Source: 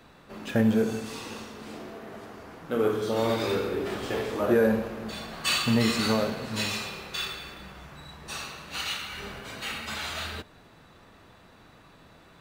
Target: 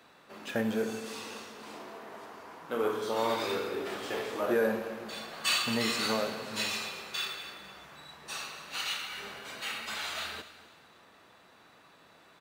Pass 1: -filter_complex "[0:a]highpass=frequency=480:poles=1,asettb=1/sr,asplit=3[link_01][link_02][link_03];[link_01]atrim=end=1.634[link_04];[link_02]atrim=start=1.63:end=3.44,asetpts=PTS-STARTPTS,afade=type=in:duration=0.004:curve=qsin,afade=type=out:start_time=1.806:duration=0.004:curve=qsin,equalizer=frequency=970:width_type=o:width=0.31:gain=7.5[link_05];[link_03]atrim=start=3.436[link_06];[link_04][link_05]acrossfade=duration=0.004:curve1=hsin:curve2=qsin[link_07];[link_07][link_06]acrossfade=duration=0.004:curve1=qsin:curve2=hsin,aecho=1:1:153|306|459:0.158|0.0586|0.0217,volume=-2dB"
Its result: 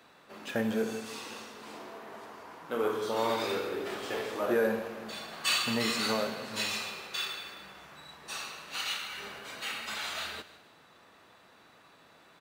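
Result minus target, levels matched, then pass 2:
echo 96 ms early
-filter_complex "[0:a]highpass=frequency=480:poles=1,asettb=1/sr,asplit=3[link_01][link_02][link_03];[link_01]atrim=end=1.634[link_04];[link_02]atrim=start=1.63:end=3.44,asetpts=PTS-STARTPTS,afade=type=in:duration=0.004:curve=qsin,afade=type=out:start_time=1.806:duration=0.004:curve=qsin,equalizer=frequency=970:width_type=o:width=0.31:gain=7.5[link_05];[link_03]atrim=start=3.436[link_06];[link_04][link_05]acrossfade=duration=0.004:curve1=hsin:curve2=qsin[link_07];[link_07][link_06]acrossfade=duration=0.004:curve1=qsin:curve2=hsin,aecho=1:1:249|498|747:0.158|0.0586|0.0217,volume=-2dB"

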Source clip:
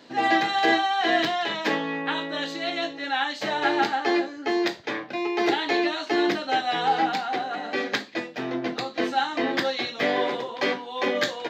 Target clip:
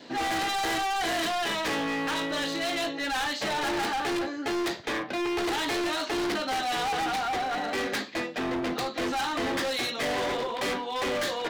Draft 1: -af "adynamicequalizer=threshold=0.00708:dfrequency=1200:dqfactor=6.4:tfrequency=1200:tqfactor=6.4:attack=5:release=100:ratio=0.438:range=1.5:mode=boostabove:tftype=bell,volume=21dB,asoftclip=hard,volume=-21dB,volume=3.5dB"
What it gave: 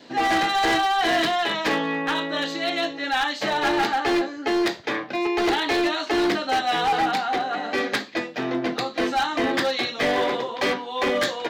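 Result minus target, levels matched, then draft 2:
gain into a clipping stage and back: distortion −7 dB
-af "adynamicequalizer=threshold=0.00708:dfrequency=1200:dqfactor=6.4:tfrequency=1200:tqfactor=6.4:attack=5:release=100:ratio=0.438:range=1.5:mode=boostabove:tftype=bell,volume=30.5dB,asoftclip=hard,volume=-30.5dB,volume=3.5dB"

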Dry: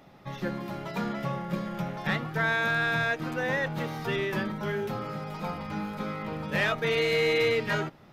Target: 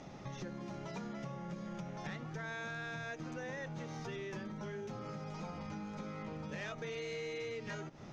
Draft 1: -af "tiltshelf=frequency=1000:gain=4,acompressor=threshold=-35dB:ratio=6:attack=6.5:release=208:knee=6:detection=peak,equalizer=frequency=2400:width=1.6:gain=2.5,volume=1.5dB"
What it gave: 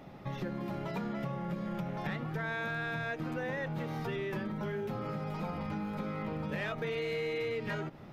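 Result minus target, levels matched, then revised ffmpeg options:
8,000 Hz band −12.0 dB; downward compressor: peak gain reduction −7 dB
-af "tiltshelf=frequency=1000:gain=4,acompressor=threshold=-43.5dB:ratio=6:attack=6.5:release=208:knee=6:detection=peak,lowpass=frequency=6300:width_type=q:width=5.6,equalizer=frequency=2400:width=1.6:gain=2.5,volume=1.5dB"

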